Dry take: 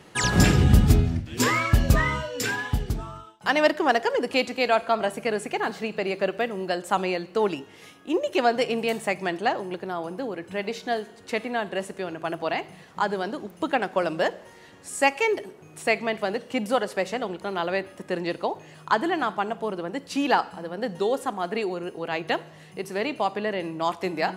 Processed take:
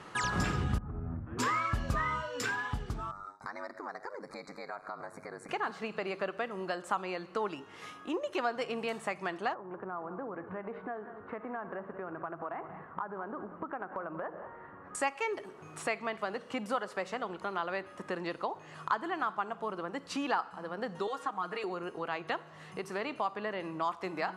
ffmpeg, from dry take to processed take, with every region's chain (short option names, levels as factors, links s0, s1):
-filter_complex "[0:a]asettb=1/sr,asplit=3[s0][s1][s2];[s0]atrim=end=0.784[s3];[s1]atrim=start=0.78:end=1.39,asetpts=PTS-STARTPTS,afade=t=in:d=0.004:c=qsin,afade=t=out:st=0.606:d=0.004:c=qsin,lowpass=f=1400:w=0.5412,lowpass=f=1400:w=1.3066,acompressor=threshold=0.0631:ratio=16:attack=3.2:release=140:knee=1:detection=peak[s4];[s2]atrim=start=1.386[s5];[s3][s4]acrossfade=d=0.004:c1=hsin:c2=qsin[s6];[s6][s5]acrossfade=d=0.004:c1=qsin:c2=hsin,asettb=1/sr,asplit=3[s7][s8][s9];[s7]atrim=end=3.114[s10];[s8]atrim=start=3.11:end=5.49,asetpts=PTS-STARTPTS,afade=t=in:d=0.004:c=qsin,afade=t=out:st=2.376:d=0.004:c=qsin,acompressor=threshold=0.00708:ratio=2.5:attack=3.2:release=140:knee=1:detection=peak,aeval=exprs='val(0)*sin(2*PI*49*n/s)':c=same,asuperstop=centerf=3000:order=12:qfactor=2.1[s11];[s9]atrim=start=5.486[s12];[s10][s11]acrossfade=d=0.004:c1=hsin:c2=qsin[s13];[s13][s12]acrossfade=d=0.004:c1=qsin:c2=hsin,asettb=1/sr,asplit=3[s14][s15][s16];[s14]atrim=end=9.544[s17];[s15]atrim=start=9.54:end=14.95,asetpts=PTS-STARTPTS,afade=t=in:d=0.004:c=qsin,afade=t=out:st=5.406:d=0.004:c=qsin,lowpass=f=1600:w=0.5412,lowpass=f=1600:w=1.3066,acompressor=threshold=0.0224:ratio=3:attack=3.2:release=140:knee=1:detection=peak,aecho=1:1:186:0.2,atrim=end_sample=238581[s18];[s16]atrim=start=14.946[s19];[s17][s18]acrossfade=d=0.004:c1=hsin:c2=qsin[s20];[s20][s19]acrossfade=d=0.004:c1=qsin:c2=hsin,asettb=1/sr,asplit=3[s21][s22][s23];[s21]atrim=end=21.074[s24];[s22]atrim=start=21.07:end=21.64,asetpts=PTS-STARTPTS,afade=t=in:d=0.004:c=qsin,afade=t=out:st=0.566:d=0.004:c=qsin,aecho=1:1:6.4:0.95,atrim=end_sample=25137,acrossover=split=810|6600[s25][s26][s27];[s25]acompressor=threshold=0.0251:ratio=4[s28];[s26]acompressor=threshold=0.0282:ratio=4[s29];[s27]acompressor=threshold=0.00178:ratio=4[s30];[s28][s29][s30]amix=inputs=3:normalize=0[s31];[s23]atrim=start=21.636[s32];[s24][s31]acrossfade=d=0.004:c1=hsin:c2=qsin[s33];[s33][s32]acrossfade=d=0.004:c1=qsin:c2=hsin,lowpass=9500,equalizer=f=1200:t=o:w=0.87:g=11.5,acompressor=threshold=0.0158:ratio=2,volume=0.75"